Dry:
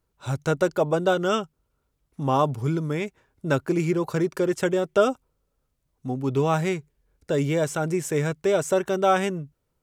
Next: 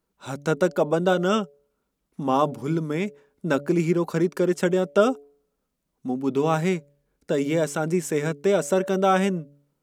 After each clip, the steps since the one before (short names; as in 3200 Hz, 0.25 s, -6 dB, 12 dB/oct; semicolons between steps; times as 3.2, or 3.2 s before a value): resonant low shelf 150 Hz -7.5 dB, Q 3; de-hum 143 Hz, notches 5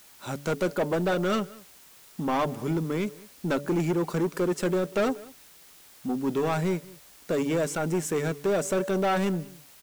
soft clip -20.5 dBFS, distortion -10 dB; added noise white -53 dBFS; outdoor echo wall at 33 m, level -22 dB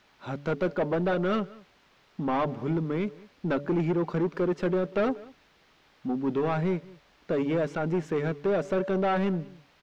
air absorption 250 m